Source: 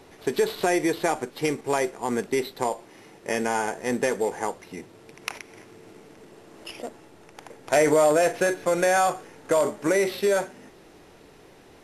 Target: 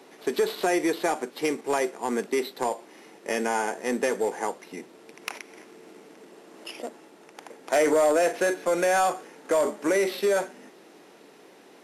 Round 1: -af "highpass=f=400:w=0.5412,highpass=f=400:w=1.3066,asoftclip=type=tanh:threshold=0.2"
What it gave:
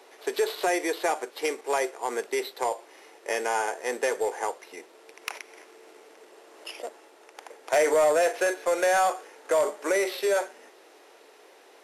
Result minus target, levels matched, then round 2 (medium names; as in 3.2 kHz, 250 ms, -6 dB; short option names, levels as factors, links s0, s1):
250 Hz band -6.5 dB
-af "highpass=f=200:w=0.5412,highpass=f=200:w=1.3066,asoftclip=type=tanh:threshold=0.2"